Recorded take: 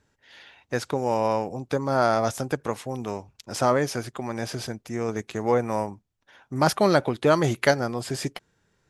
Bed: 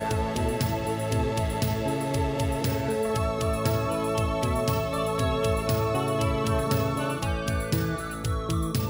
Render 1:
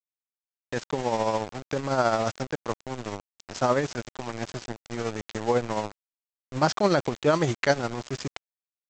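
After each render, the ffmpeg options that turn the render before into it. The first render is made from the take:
ffmpeg -i in.wav -af "aresample=16000,aeval=exprs='val(0)*gte(abs(val(0)),0.0335)':channel_layout=same,aresample=44100,tremolo=f=14:d=0.46" out.wav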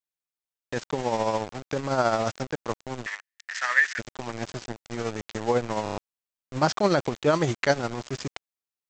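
ffmpeg -i in.wav -filter_complex "[0:a]asplit=3[link_01][link_02][link_03];[link_01]afade=type=out:start_time=3.05:duration=0.02[link_04];[link_02]highpass=frequency=1800:width_type=q:width=10,afade=type=in:start_time=3.05:duration=0.02,afade=type=out:start_time=3.98:duration=0.02[link_05];[link_03]afade=type=in:start_time=3.98:duration=0.02[link_06];[link_04][link_05][link_06]amix=inputs=3:normalize=0,asplit=6[link_07][link_08][link_09][link_10][link_11][link_12];[link_07]atrim=end=5.862[link_13];[link_08]atrim=start=5.828:end=5.862[link_14];[link_09]atrim=start=5.828:end=5.862[link_15];[link_10]atrim=start=5.828:end=5.862[link_16];[link_11]atrim=start=5.828:end=5.862[link_17];[link_12]atrim=start=5.978[link_18];[link_13][link_14]acrossfade=duration=0.004:curve1=hsin:curve2=hsin[link_19];[link_19][link_15]acrossfade=duration=0.004:curve1=hsin:curve2=hsin[link_20];[link_20][link_16]acrossfade=duration=0.004:curve1=hsin:curve2=hsin[link_21];[link_21][link_17]acrossfade=duration=0.004:curve1=hsin:curve2=hsin[link_22];[link_22][link_18]acrossfade=duration=0.004:curve1=hsin:curve2=hsin" out.wav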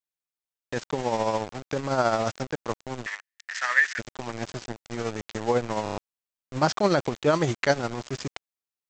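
ffmpeg -i in.wav -af anull out.wav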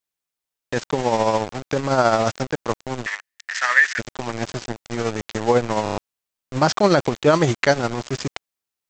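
ffmpeg -i in.wav -af "volume=6.5dB,alimiter=limit=-3dB:level=0:latency=1" out.wav

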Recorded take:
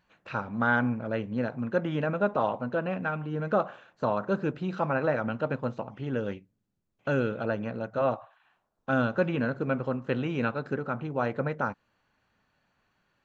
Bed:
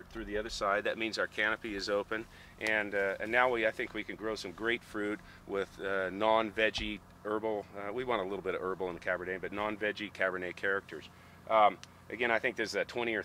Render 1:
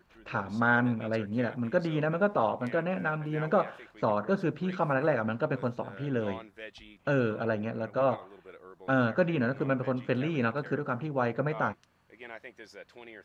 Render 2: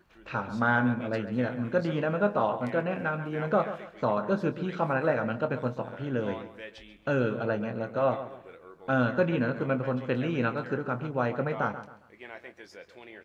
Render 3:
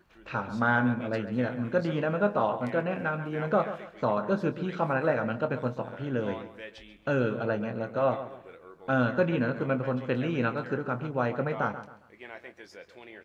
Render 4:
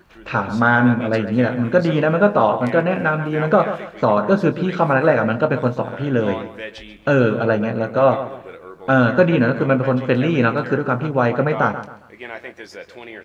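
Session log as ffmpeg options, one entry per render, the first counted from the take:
ffmpeg -i in.wav -i bed.wav -filter_complex "[1:a]volume=-14.5dB[link_01];[0:a][link_01]amix=inputs=2:normalize=0" out.wav
ffmpeg -i in.wav -filter_complex "[0:a]asplit=2[link_01][link_02];[link_02]adelay=24,volume=-11dB[link_03];[link_01][link_03]amix=inputs=2:normalize=0,asplit=2[link_04][link_05];[link_05]adelay=136,lowpass=frequency=3600:poles=1,volume=-12dB,asplit=2[link_06][link_07];[link_07]adelay=136,lowpass=frequency=3600:poles=1,volume=0.34,asplit=2[link_08][link_09];[link_09]adelay=136,lowpass=frequency=3600:poles=1,volume=0.34[link_10];[link_04][link_06][link_08][link_10]amix=inputs=4:normalize=0" out.wav
ffmpeg -i in.wav -af anull out.wav
ffmpeg -i in.wav -af "volume=11.5dB,alimiter=limit=-3dB:level=0:latency=1" out.wav

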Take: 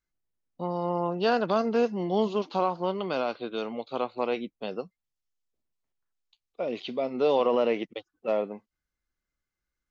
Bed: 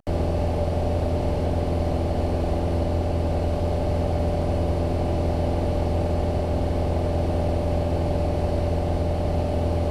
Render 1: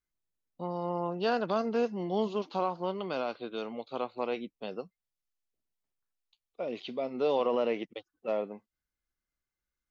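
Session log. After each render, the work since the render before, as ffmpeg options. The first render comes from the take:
ffmpeg -i in.wav -af "volume=-4.5dB" out.wav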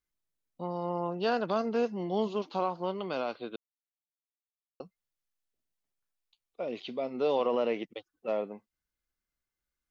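ffmpeg -i in.wav -filter_complex "[0:a]asplit=3[link_01][link_02][link_03];[link_01]atrim=end=3.56,asetpts=PTS-STARTPTS,afade=type=out:start_time=3.556:duration=0.004:curve=hsin[link_04];[link_02]atrim=start=3.56:end=4.8,asetpts=PTS-STARTPTS,volume=0[link_05];[link_03]atrim=start=4.8,asetpts=PTS-STARTPTS,afade=type=in:duration=0.004:curve=hsin[link_06];[link_04][link_05][link_06]concat=n=3:v=0:a=1" out.wav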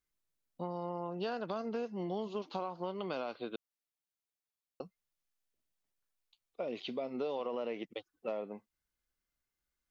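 ffmpeg -i in.wav -af "acompressor=threshold=-34dB:ratio=6" out.wav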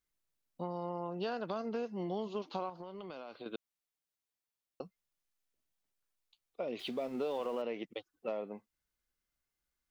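ffmpeg -i in.wav -filter_complex "[0:a]asettb=1/sr,asplit=3[link_01][link_02][link_03];[link_01]atrim=end=2.694[link_04];[link_02]atrim=start=2.69:end=3.46,asetpts=PTS-STARTPTS,afade=type=in:duration=0.004:curve=qsin,afade=type=out:start_time=0.766:duration=0.004:curve=qsin,acompressor=threshold=-42dB:ratio=6:attack=3.2:release=140:knee=1:detection=peak[link_05];[link_03]atrim=start=3.456[link_06];[link_04][link_05]acrossfade=duration=0.004:curve1=hsin:curve2=qsin[link_07];[link_07][link_06]acrossfade=duration=0.004:curve1=qsin:curve2=hsin,asettb=1/sr,asplit=3[link_08][link_09][link_10];[link_08]atrim=end=6.794[link_11];[link_09]atrim=start=6.79:end=7.62,asetpts=PTS-STARTPTS,afade=type=in:duration=0.004:curve=qsin,afade=type=out:start_time=0.826:duration=0.004:curve=qsin,aeval=exprs='val(0)+0.5*0.00299*sgn(val(0))':channel_layout=same[link_12];[link_10]atrim=start=7.616[link_13];[link_11][link_12]acrossfade=duration=0.004:curve1=hsin:curve2=qsin[link_14];[link_14][link_13]acrossfade=duration=0.004:curve1=qsin:curve2=hsin" out.wav

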